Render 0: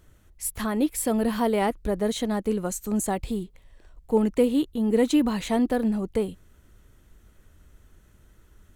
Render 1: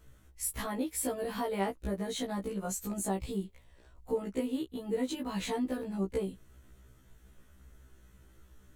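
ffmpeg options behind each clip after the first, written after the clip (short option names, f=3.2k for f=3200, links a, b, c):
-af "acompressor=threshold=-28dB:ratio=3,afftfilt=real='re*1.73*eq(mod(b,3),0)':imag='im*1.73*eq(mod(b,3),0)':win_size=2048:overlap=0.75"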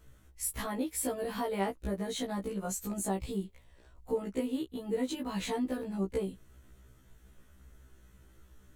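-af anull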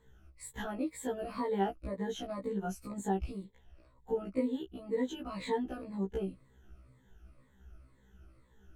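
-af "afftfilt=real='re*pow(10,15/40*sin(2*PI*(1*log(max(b,1)*sr/1024/100)/log(2)-(-2)*(pts-256)/sr)))':imag='im*pow(10,15/40*sin(2*PI*(1*log(max(b,1)*sr/1024/100)/log(2)-(-2)*(pts-256)/sr)))':win_size=1024:overlap=0.75,lowpass=f=2.2k:p=1,volume=-3.5dB"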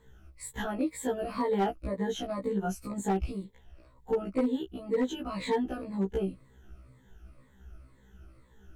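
-af "asoftclip=type=hard:threshold=-26dB,volume=5dB"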